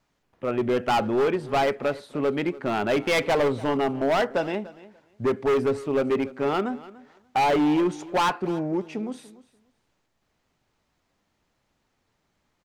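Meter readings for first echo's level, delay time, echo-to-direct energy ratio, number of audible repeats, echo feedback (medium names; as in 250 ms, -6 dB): -19.0 dB, 291 ms, -19.0 dB, 2, 17%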